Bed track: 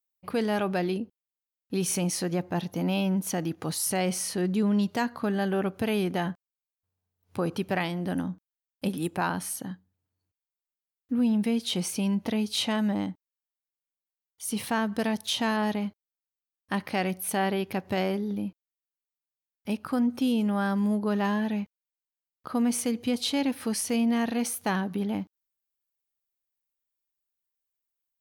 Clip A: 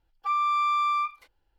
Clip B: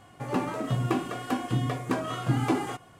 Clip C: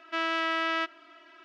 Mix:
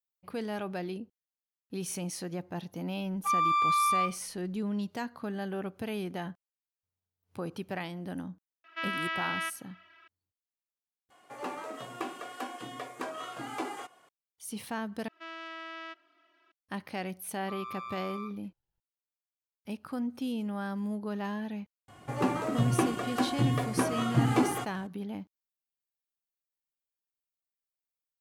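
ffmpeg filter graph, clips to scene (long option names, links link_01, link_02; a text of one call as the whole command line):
ffmpeg -i bed.wav -i cue0.wav -i cue1.wav -i cue2.wav -filter_complex "[1:a]asplit=2[link_01][link_02];[3:a]asplit=2[link_03][link_04];[2:a]asplit=2[link_05][link_06];[0:a]volume=-8.5dB[link_07];[link_03]equalizer=frequency=2100:width_type=o:width=2.7:gain=13.5[link_08];[link_05]highpass=440[link_09];[link_02]tremolo=f=120:d=0.75[link_10];[link_07]asplit=3[link_11][link_12][link_13];[link_11]atrim=end=11.104[link_14];[link_09]atrim=end=2.99,asetpts=PTS-STARTPTS,volume=-5.5dB[link_15];[link_12]atrim=start=14.086:end=15.084[link_16];[link_04]atrim=end=1.44,asetpts=PTS-STARTPTS,volume=-14dB[link_17];[link_13]atrim=start=16.516[link_18];[link_01]atrim=end=1.58,asetpts=PTS-STARTPTS,volume=-1.5dB,afade=type=in:duration=0.004:curve=hsin,afade=type=out:start_time=1.576:duration=0.004:curve=hsin,adelay=3000[link_19];[link_08]atrim=end=1.44,asetpts=PTS-STARTPTS,volume=-16dB,afade=type=in:duration=0.004:curve=hsin,afade=type=out:start_time=1.436:duration=0.004:curve=hsin,adelay=8640[link_20];[link_10]atrim=end=1.58,asetpts=PTS-STARTPTS,volume=-13.5dB,afade=type=in:duration=0.004:curve=hsin,afade=type=out:start_time=1.576:duration=0.004:curve=hsin,adelay=17220[link_21];[link_06]atrim=end=2.99,asetpts=PTS-STARTPTS,afade=type=in:duration=0.004:curve=hsin,afade=type=out:start_time=2.986:duration=0.004:curve=hsin,adelay=21880[link_22];[link_14][link_15]acrossfade=duration=0.004:curve1=hsin:curve2=hsin[link_23];[link_23][link_16]acrossfade=duration=0.004:curve1=hsin:curve2=hsin[link_24];[link_24][link_17]acrossfade=duration=0.004:curve1=hsin:curve2=hsin[link_25];[link_25][link_18]acrossfade=duration=0.004:curve1=hsin:curve2=hsin[link_26];[link_26][link_19][link_20][link_21][link_22]amix=inputs=5:normalize=0" out.wav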